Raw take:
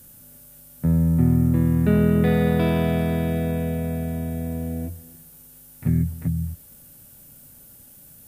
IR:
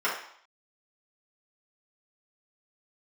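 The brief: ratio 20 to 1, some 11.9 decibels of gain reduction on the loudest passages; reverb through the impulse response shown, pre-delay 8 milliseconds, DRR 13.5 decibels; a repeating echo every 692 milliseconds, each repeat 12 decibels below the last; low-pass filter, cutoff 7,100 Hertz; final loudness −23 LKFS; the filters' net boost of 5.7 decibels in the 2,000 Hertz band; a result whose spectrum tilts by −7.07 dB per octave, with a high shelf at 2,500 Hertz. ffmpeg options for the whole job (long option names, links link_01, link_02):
-filter_complex "[0:a]lowpass=7100,equalizer=frequency=2000:width_type=o:gain=9,highshelf=frequency=2500:gain=-4.5,acompressor=threshold=-26dB:ratio=20,aecho=1:1:692|1384|2076:0.251|0.0628|0.0157,asplit=2[link_01][link_02];[1:a]atrim=start_sample=2205,adelay=8[link_03];[link_02][link_03]afir=irnorm=-1:irlink=0,volume=-26dB[link_04];[link_01][link_04]amix=inputs=2:normalize=0,volume=8dB"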